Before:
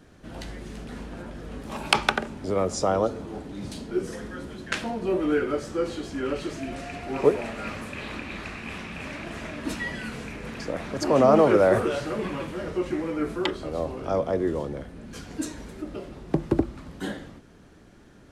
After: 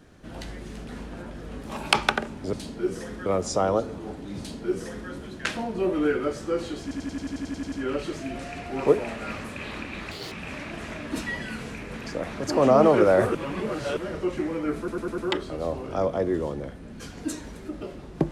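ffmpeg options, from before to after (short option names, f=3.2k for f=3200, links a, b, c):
-filter_complex "[0:a]asplit=21[a][b][c][d][e][f][g][h][i][j][k][l][m][n][o][p][q][r][s][t][u];[a]atrim=end=2.532[v];[b]atrim=start=3.648:end=4.382[w];[c]atrim=start=2.528:end=6.182[x];[d]atrim=start=6.088:end=6.182[y];[e]atrim=start=6.088:end=6.182[z];[f]atrim=start=6.088:end=6.182[aa];[g]atrim=start=6.088:end=6.182[ab];[h]atrim=start=6.088:end=6.182[ac];[i]atrim=start=6.088:end=6.182[ad];[j]atrim=start=6.088:end=6.182[ae];[k]atrim=start=6.088:end=6.182[af];[l]atrim=start=6.088:end=6.182[ag];[m]atrim=start=6.088:end=8.484[ah];[n]atrim=start=8.48:end=8.85,asetpts=PTS-STARTPTS,asetrate=78498,aresample=44100[ai];[o]atrim=start=8.846:end=11.882[aj];[p]atrim=start=11.878:end=12.502,asetpts=PTS-STARTPTS,areverse[ak];[q]atrim=start=12.498:end=13.412[al];[r]atrim=start=13.308:end=13.412[am];[s]atrim=start=13.308:end=13.412[an];[t]atrim=start=13.308:end=13.412[ao];[u]atrim=start=13.308[ap];[v][w]acrossfade=d=0.004:c1=hsin:c2=hsin[aq];[aq][x]acrossfade=d=0.004:c1=hsin:c2=hsin[ar];[ar][y]acrossfade=d=0.004:c1=hsin:c2=hsin[as];[as][z]acrossfade=d=0.004:c1=hsin:c2=hsin[at];[at][aa]acrossfade=d=0.004:c1=hsin:c2=hsin[au];[au][ab]acrossfade=d=0.004:c1=hsin:c2=hsin[av];[av][ac]acrossfade=d=0.004:c1=hsin:c2=hsin[aw];[aw][ad]acrossfade=d=0.004:c1=hsin:c2=hsin[ax];[ax][ae]acrossfade=d=0.004:c1=hsin:c2=hsin[ay];[ay][af]acrossfade=d=0.004:c1=hsin:c2=hsin[az];[az][ag]acrossfade=d=0.004:c1=hsin:c2=hsin[ba];[ba][ah]acrossfade=d=0.004:c1=hsin:c2=hsin[bb];[bb][ai]acrossfade=d=0.004:c1=hsin:c2=hsin[bc];[bc][aj]acrossfade=d=0.004:c1=hsin:c2=hsin[bd];[bd][ak]acrossfade=d=0.004:c1=hsin:c2=hsin[be];[be][al]acrossfade=d=0.004:c1=hsin:c2=hsin[bf];[bf][am]acrossfade=d=0.004:c1=hsin:c2=hsin[bg];[bg][an]acrossfade=d=0.004:c1=hsin:c2=hsin[bh];[bh][ao]acrossfade=d=0.004:c1=hsin:c2=hsin[bi];[bi][ap]acrossfade=d=0.004:c1=hsin:c2=hsin"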